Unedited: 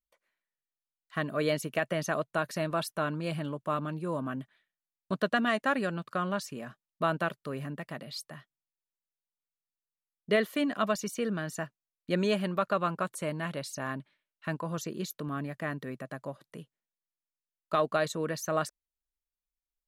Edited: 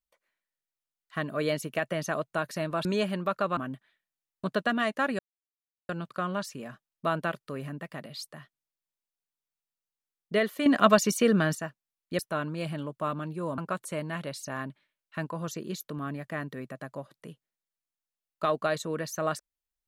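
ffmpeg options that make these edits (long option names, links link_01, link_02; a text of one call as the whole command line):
ffmpeg -i in.wav -filter_complex "[0:a]asplit=8[link_01][link_02][link_03][link_04][link_05][link_06][link_07][link_08];[link_01]atrim=end=2.852[link_09];[link_02]atrim=start=12.158:end=12.882[link_10];[link_03]atrim=start=4.238:end=5.86,asetpts=PTS-STARTPTS,afade=type=out:start_time=1.618:duration=0.004:curve=hsin,apad=pad_dur=0.7[link_11];[link_04]atrim=start=5.86:end=10.632,asetpts=PTS-STARTPTS,afade=type=in:duration=0.004:curve=hsin[link_12];[link_05]atrim=start=10.628:end=11.522,asetpts=PTS-STARTPTS,volume=9dB[link_13];[link_06]atrim=start=11.518:end=12.162[link_14];[link_07]atrim=start=2.848:end=4.242[link_15];[link_08]atrim=start=12.878[link_16];[link_09][link_10]acrossfade=duration=0.004:curve1=hsin:curve2=hsin[link_17];[link_11][link_12]concat=n=2:v=0:a=1[link_18];[link_17][link_18]acrossfade=duration=0.004:curve1=hsin:curve2=hsin[link_19];[link_19][link_13]acrossfade=duration=0.004:curve1=hsin:curve2=hsin[link_20];[link_20][link_14]acrossfade=duration=0.004:curve1=hsin:curve2=hsin[link_21];[link_21][link_15]acrossfade=duration=0.004:curve1=hsin:curve2=hsin[link_22];[link_22][link_16]acrossfade=duration=0.004:curve1=hsin:curve2=hsin" out.wav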